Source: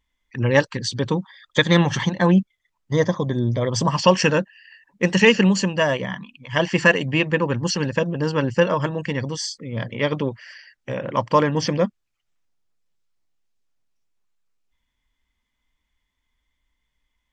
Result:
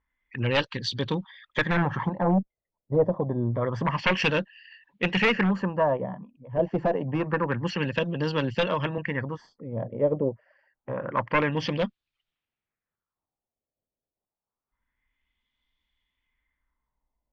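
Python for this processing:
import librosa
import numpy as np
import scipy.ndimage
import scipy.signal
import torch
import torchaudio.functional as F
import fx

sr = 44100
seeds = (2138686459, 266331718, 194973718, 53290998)

y = fx.diode_clip(x, sr, knee_db=-5.5)
y = 10.0 ** (-12.0 / 20.0) * (np.abs((y / 10.0 ** (-12.0 / 20.0) + 3.0) % 4.0 - 2.0) - 1.0)
y = fx.filter_lfo_lowpass(y, sr, shape='sine', hz=0.27, low_hz=570.0, high_hz=3700.0, q=2.4)
y = fx.band_squash(y, sr, depth_pct=40, at=(6.59, 8.98))
y = y * 10.0 ** (-5.5 / 20.0)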